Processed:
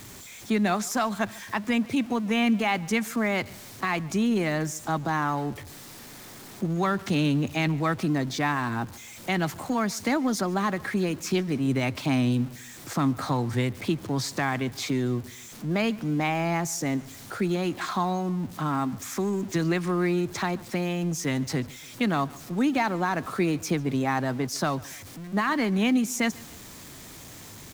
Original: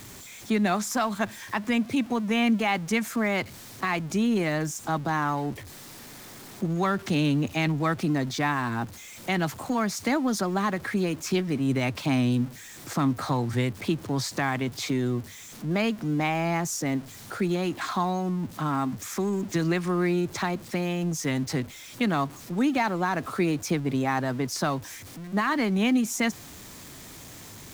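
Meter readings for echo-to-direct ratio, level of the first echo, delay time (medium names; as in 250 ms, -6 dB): -22.0 dB, -23.0 dB, 144 ms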